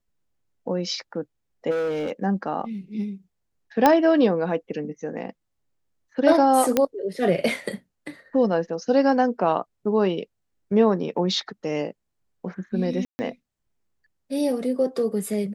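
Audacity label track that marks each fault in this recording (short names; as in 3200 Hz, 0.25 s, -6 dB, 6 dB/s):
1.700000	2.110000	clipped -22.5 dBFS
3.860000	3.860000	pop -4 dBFS
6.770000	6.770000	pop -5 dBFS
13.050000	13.190000	gap 0.14 s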